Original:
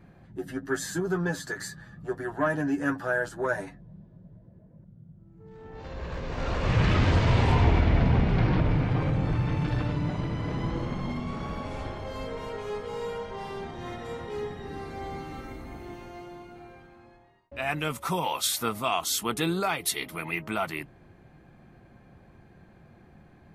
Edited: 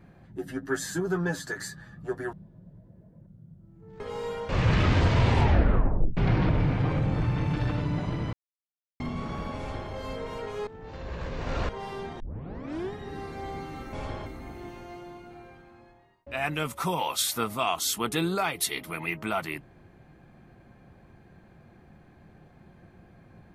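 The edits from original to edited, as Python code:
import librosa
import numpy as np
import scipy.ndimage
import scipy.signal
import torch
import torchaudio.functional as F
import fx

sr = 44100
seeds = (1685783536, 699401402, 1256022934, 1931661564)

y = fx.edit(x, sr, fx.cut(start_s=2.33, length_s=1.58),
    fx.swap(start_s=5.58, length_s=1.02, other_s=12.78, other_length_s=0.49),
    fx.tape_stop(start_s=7.5, length_s=0.78),
    fx.silence(start_s=10.44, length_s=0.67),
    fx.duplicate(start_s=11.69, length_s=0.33, to_s=15.51),
    fx.tape_start(start_s=13.78, length_s=0.73), tone=tone)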